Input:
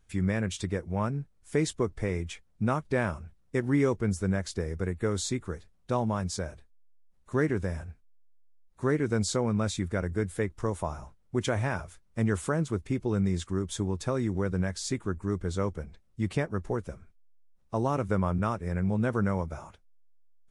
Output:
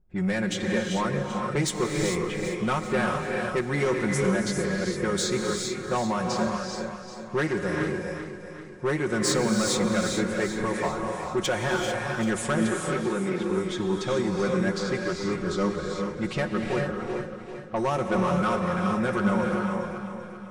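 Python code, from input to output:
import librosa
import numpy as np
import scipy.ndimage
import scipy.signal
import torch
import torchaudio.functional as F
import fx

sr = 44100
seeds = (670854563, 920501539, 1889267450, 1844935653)

p1 = fx.highpass(x, sr, hz=260.0, slope=12, at=(12.58, 13.42))
p2 = fx.env_lowpass(p1, sr, base_hz=400.0, full_db=-24.0)
p3 = fx.low_shelf(p2, sr, hz=330.0, db=-9.0)
p4 = p3 + 0.72 * np.pad(p3, (int(5.5 * sr / 1000.0), 0))[:len(p3)]
p5 = 10.0 ** (-26.5 / 20.0) * np.tanh(p4 / 10.0 ** (-26.5 / 20.0))
p6 = p5 + fx.echo_feedback(p5, sr, ms=390, feedback_pct=53, wet_db=-10.0, dry=0)
p7 = fx.rev_gated(p6, sr, seeds[0], gate_ms=470, shape='rising', drr_db=1.5)
y = F.gain(torch.from_numpy(p7), 6.5).numpy()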